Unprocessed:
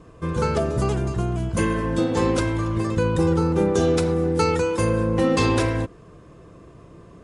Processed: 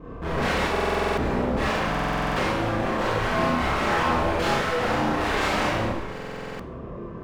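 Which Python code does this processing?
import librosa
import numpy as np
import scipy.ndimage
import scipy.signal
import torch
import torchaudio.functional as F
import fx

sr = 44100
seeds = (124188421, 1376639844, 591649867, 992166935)

p1 = scipy.signal.sosfilt(scipy.signal.bessel(2, 1500.0, 'lowpass', norm='mag', fs=sr, output='sos'), x)
p2 = fx.peak_eq(p1, sr, hz=74.0, db=-2.5, octaves=1.6)
p3 = fx.rider(p2, sr, range_db=4, speed_s=2.0)
p4 = p2 + F.gain(torch.from_numpy(p3), 2.0).numpy()
p5 = 10.0 ** (-17.0 / 20.0) * (np.abs((p4 / 10.0 ** (-17.0 / 20.0) + 3.0) % 4.0 - 2.0) - 1.0)
p6 = p5 + fx.echo_single(p5, sr, ms=713, db=-19.5, dry=0)
p7 = fx.clip_asym(p6, sr, top_db=-31.5, bottom_db=-21.5)
p8 = fx.chorus_voices(p7, sr, voices=4, hz=0.92, base_ms=26, depth_ms=3.0, mix_pct=50)
p9 = fx.rev_schroeder(p8, sr, rt60_s=0.76, comb_ms=29, drr_db=-5.0)
y = fx.buffer_glitch(p9, sr, at_s=(0.71, 1.9, 6.13), block=2048, repeats=9)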